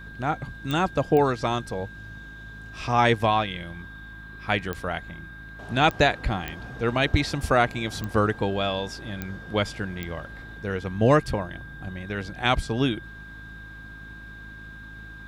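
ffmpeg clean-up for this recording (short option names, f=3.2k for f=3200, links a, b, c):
-af "adeclick=t=4,bandreject=f=53.3:t=h:w=4,bandreject=f=106.6:t=h:w=4,bandreject=f=159.9:t=h:w=4,bandreject=f=213.2:t=h:w=4,bandreject=f=266.5:t=h:w=4,bandreject=f=319.8:t=h:w=4,bandreject=f=1.6k:w=30"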